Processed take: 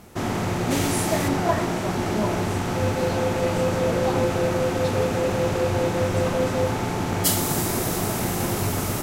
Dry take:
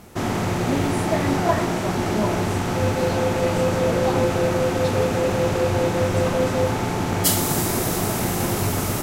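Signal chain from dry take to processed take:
0:00.70–0:01.27: high-shelf EQ 3,100 Hz → 6,000 Hz +12 dB
level −2 dB

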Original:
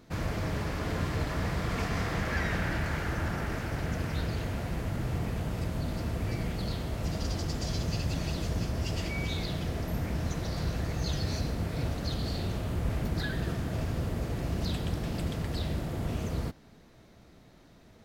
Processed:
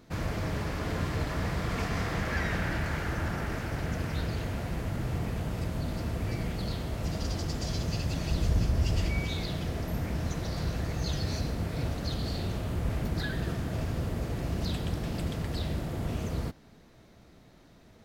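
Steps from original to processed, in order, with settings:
0:08.31–0:09.19: low-shelf EQ 87 Hz +11 dB

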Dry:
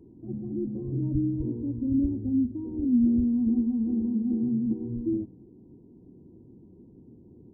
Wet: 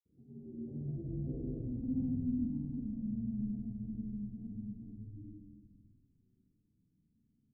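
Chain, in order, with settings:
source passing by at 0:01.65, 29 m/s, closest 2.6 metres
high-pass filter 60 Hz
low-pass that shuts in the quiet parts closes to 330 Hz, open at −35.5 dBFS
elliptic low-pass filter 770 Hz
parametric band 350 Hz −13.5 dB 0.35 octaves
reversed playback
downward compressor 12 to 1, threshold −47 dBFS, peak gain reduction 18.5 dB
reversed playback
granular cloud, pitch spread up and down by 0 semitones
echo with shifted repeats 247 ms, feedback 49%, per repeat −96 Hz, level −10 dB
convolution reverb RT60 1.4 s, pre-delay 48 ms, DRR 0 dB
level +11.5 dB

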